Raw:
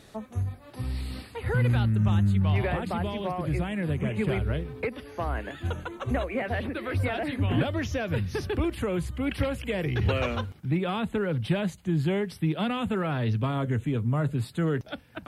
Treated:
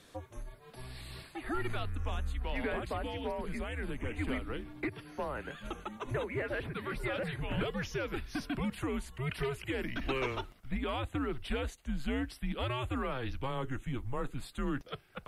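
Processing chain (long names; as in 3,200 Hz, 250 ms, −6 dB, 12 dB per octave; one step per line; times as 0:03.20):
high-pass filter 290 Hz 6 dB per octave
frequency shifter −130 Hz
level −4 dB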